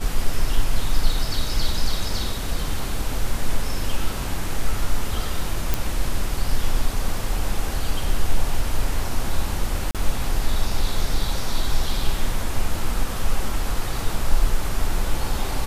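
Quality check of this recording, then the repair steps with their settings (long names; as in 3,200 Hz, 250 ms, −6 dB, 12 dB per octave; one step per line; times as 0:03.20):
0:05.74: click
0:09.91–0:09.95: drop-out 37 ms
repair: click removal
repair the gap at 0:09.91, 37 ms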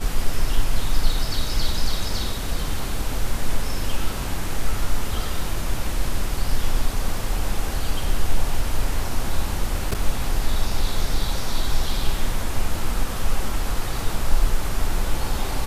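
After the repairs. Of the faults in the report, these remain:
none of them is left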